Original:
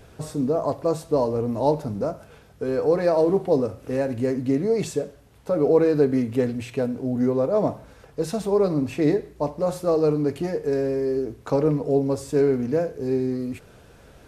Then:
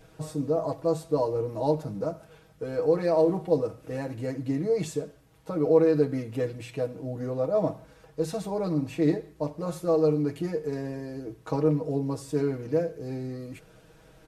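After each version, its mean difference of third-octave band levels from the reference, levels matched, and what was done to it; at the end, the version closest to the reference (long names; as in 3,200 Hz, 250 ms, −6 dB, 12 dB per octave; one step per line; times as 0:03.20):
1.5 dB: comb filter 6.3 ms, depth 83%
level −7 dB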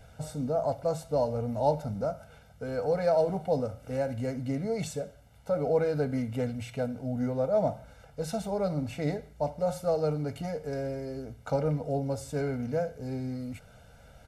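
3.0 dB: comb filter 1.4 ms, depth 90%
level −7.5 dB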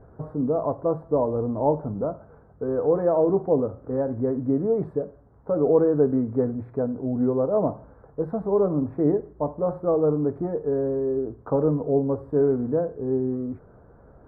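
5.0 dB: inverse Chebyshev low-pass filter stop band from 2,600 Hz, stop band 40 dB
level −1 dB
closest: first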